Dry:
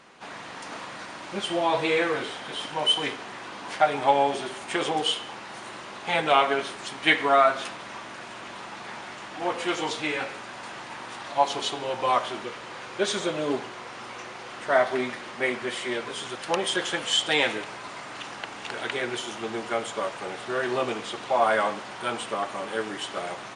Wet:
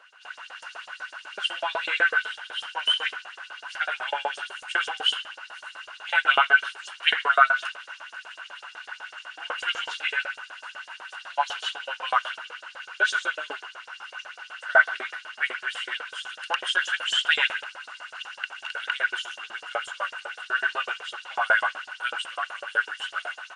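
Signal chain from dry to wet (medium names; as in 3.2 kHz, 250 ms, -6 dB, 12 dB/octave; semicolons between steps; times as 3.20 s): dynamic bell 1.7 kHz, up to +5 dB, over -36 dBFS, Q 0.86; LFO high-pass saw up 8 Hz 490–7000 Hz; small resonant body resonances 1.5/2.8 kHz, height 17 dB, ringing for 25 ms; trim -9 dB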